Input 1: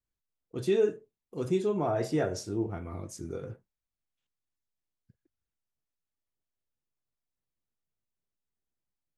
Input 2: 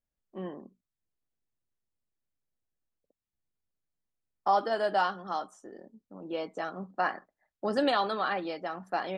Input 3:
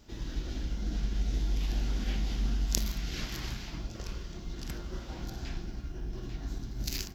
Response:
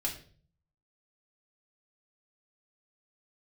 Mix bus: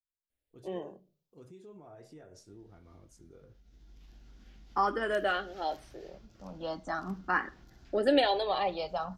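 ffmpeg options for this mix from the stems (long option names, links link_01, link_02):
-filter_complex "[0:a]alimiter=level_in=2.5dB:limit=-24dB:level=0:latency=1:release=114,volume=-2.5dB,volume=-17dB,asplit=2[link_01][link_02];[1:a]asplit=2[link_03][link_04];[link_04]afreqshift=0.39[link_05];[link_03][link_05]amix=inputs=2:normalize=1,adelay=300,volume=2.5dB,asplit=2[link_06][link_07];[link_07]volume=-16.5dB[link_08];[2:a]equalizer=frequency=1400:width_type=o:width=0.77:gain=3.5,acompressor=threshold=-34dB:ratio=10,adelay=2400,volume=-17dB[link_09];[link_02]apad=whole_len=420769[link_10];[link_09][link_10]sidechaincompress=threshold=-60dB:ratio=8:attack=8.2:release=636[link_11];[3:a]atrim=start_sample=2205[link_12];[link_08][link_12]afir=irnorm=-1:irlink=0[link_13];[link_01][link_06][link_11][link_13]amix=inputs=4:normalize=0"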